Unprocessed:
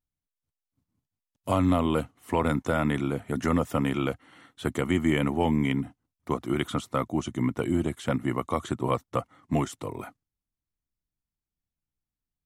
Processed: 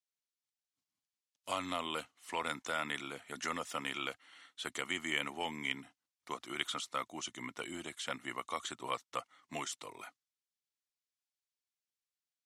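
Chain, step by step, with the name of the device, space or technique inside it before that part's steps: piezo pickup straight into a mixer (low-pass 5.1 kHz 12 dB/octave; differentiator); trim +8 dB

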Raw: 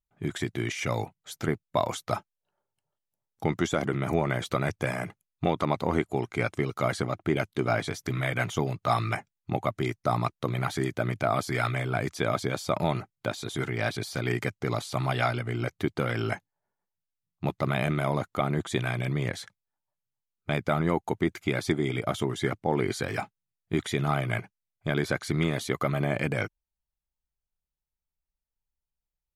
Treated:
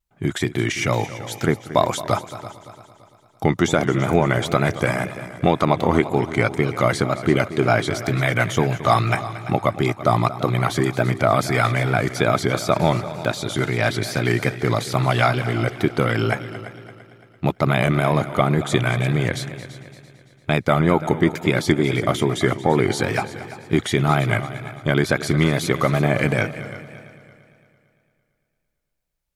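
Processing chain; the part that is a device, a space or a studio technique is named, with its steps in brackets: multi-head tape echo (multi-head delay 113 ms, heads second and third, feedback 46%, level -15 dB; wow and flutter); trim +8.5 dB

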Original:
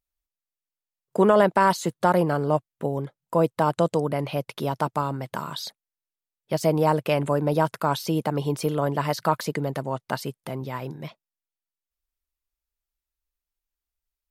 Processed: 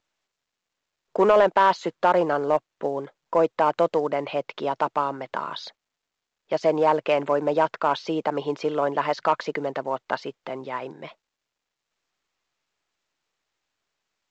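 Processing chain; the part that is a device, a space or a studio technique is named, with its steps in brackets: telephone (band-pass 370–3100 Hz; saturation -11 dBFS, distortion -19 dB; trim +3.5 dB; µ-law 128 kbps 16 kHz)

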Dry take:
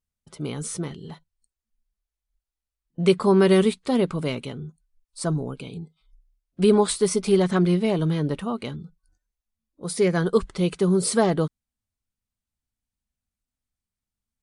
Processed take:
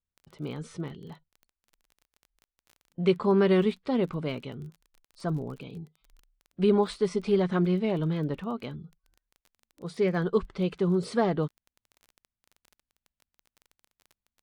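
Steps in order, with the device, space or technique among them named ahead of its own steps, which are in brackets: lo-fi chain (low-pass 3.5 kHz 12 dB/octave; wow and flutter; crackle 22 per s -36 dBFS); trim -5 dB

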